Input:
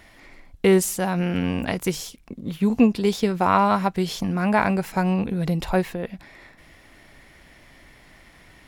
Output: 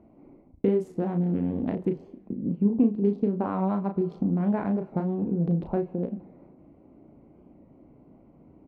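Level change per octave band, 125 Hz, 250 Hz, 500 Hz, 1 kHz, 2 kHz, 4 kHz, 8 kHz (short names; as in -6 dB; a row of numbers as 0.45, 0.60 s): -3.0 dB, -3.0 dB, -5.0 dB, -13.0 dB, -20.0 dB, under -25 dB, under -35 dB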